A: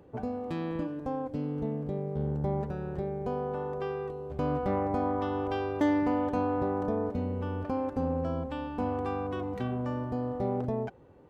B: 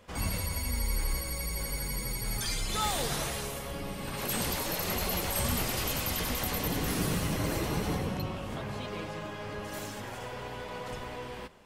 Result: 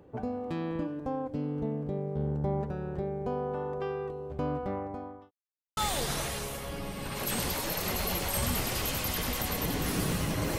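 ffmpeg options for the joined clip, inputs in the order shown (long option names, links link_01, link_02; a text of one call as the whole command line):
ffmpeg -i cue0.wav -i cue1.wav -filter_complex "[0:a]apad=whole_dur=10.58,atrim=end=10.58,asplit=2[link_01][link_02];[link_01]atrim=end=5.31,asetpts=PTS-STARTPTS,afade=type=out:start_time=4.25:duration=1.06[link_03];[link_02]atrim=start=5.31:end=5.77,asetpts=PTS-STARTPTS,volume=0[link_04];[1:a]atrim=start=2.79:end=7.6,asetpts=PTS-STARTPTS,afade=type=in:duration=0.004:curve=hsin[link_05];[link_03][link_04][link_05]concat=n=3:v=0:a=1" out.wav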